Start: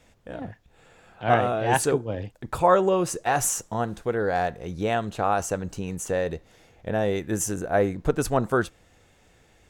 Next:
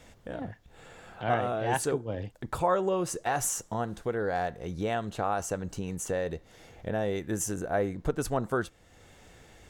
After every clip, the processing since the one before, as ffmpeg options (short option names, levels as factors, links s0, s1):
-af "bandreject=f=2500:w=20,acompressor=threshold=0.00355:ratio=1.5,volume=1.68"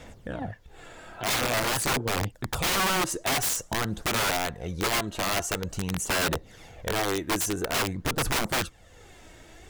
-af "aphaser=in_gain=1:out_gain=1:delay=3.2:decay=0.45:speed=0.48:type=sinusoidal,aeval=exprs='(mod(15.8*val(0)+1,2)-1)/15.8':c=same,volume=1.5"